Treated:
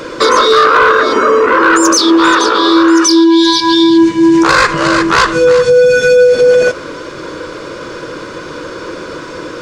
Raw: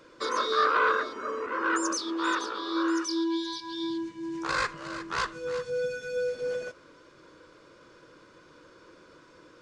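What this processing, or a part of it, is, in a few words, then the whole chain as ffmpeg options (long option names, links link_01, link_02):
mastering chain: -af "equalizer=frequency=460:width_type=o:width=0.77:gain=2.5,acompressor=threshold=-29dB:ratio=3,asoftclip=type=tanh:threshold=-22.5dB,asoftclip=type=hard:threshold=-26dB,alimiter=level_in=29.5dB:limit=-1dB:release=50:level=0:latency=1,volume=-1dB"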